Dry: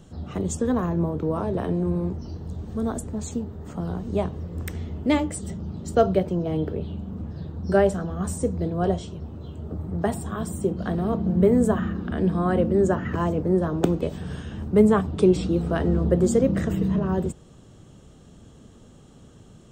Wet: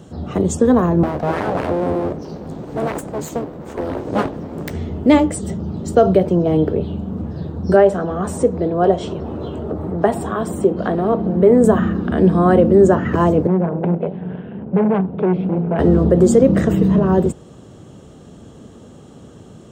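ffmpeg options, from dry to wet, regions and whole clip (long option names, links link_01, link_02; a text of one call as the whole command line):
ffmpeg -i in.wav -filter_complex "[0:a]asettb=1/sr,asplit=3[link_01][link_02][link_03];[link_01]atrim=end=1.034[link_04];[link_02]atrim=start=1.03:end=4.71,asetpts=PTS-STARTPTS,afade=type=in:duration=0.004:curve=qsin,afade=type=out:start_time=3.676:duration=0.004:curve=qsin,aeval=exprs='abs(val(0))':channel_layout=same,asplit=2[link_05][link_06];[link_06]adelay=14,volume=-13dB[link_07];[link_05][link_07]amix=inputs=2:normalize=0,atrim=end_sample=162288[link_08];[link_03]atrim=start=4.706[link_09];[link_04][link_08]acrossfade=duration=0.004:curve1=hsin:curve2=qsin[link_10];[link_10][link_09]acrossfade=duration=0.004:curve1=qsin:curve2=hsin,asettb=1/sr,asplit=3[link_11][link_12][link_13];[link_11]atrim=end=7.764[link_14];[link_12]atrim=start=7.76:end=11.64,asetpts=PTS-STARTPTS,afade=type=in:duration=0.004:curve=qsin,afade=type=out:start_time=3.876:duration=0.004:curve=qsin,bass=frequency=250:gain=-8,treble=frequency=4000:gain=-8,acompressor=mode=upward:threshold=-25dB:ratio=2.5:attack=3.2:release=140:knee=2.83:detection=peak[link_15];[link_13]atrim=start=11.636[link_16];[link_14][link_15]acrossfade=duration=0.004:curve1=hsin:curve2=qsin[link_17];[link_17][link_16]acrossfade=duration=0.004:curve1=qsin:curve2=hsin,asettb=1/sr,asplit=3[link_18][link_19][link_20];[link_18]atrim=end=13.474[link_21];[link_19]atrim=start=13.47:end=15.79,asetpts=PTS-STARTPTS,afade=type=in:duration=0.004:curve=qsin,afade=type=out:start_time=2.316:duration=0.004:curve=qsin,tremolo=f=190:d=0.75,asoftclip=type=hard:threshold=-22.5dB,highpass=170,equalizer=frequency=180:width_type=q:width=4:gain=9,equalizer=frequency=300:width_type=q:width=4:gain=-8,equalizer=frequency=1200:width_type=q:width=4:gain=-8,equalizer=frequency=1800:width_type=q:width=4:gain=-6,lowpass=frequency=2300:width=0.5412,lowpass=frequency=2300:width=1.3066[link_22];[link_20]atrim=start=15.786[link_23];[link_21][link_22]acrossfade=duration=0.004:curve1=hsin:curve2=qsin[link_24];[link_24][link_23]acrossfade=duration=0.004:curve1=qsin:curve2=hsin,highpass=60,equalizer=frequency=470:width=0.41:gain=6,alimiter=level_in=6.5dB:limit=-1dB:release=50:level=0:latency=1,volume=-1dB" out.wav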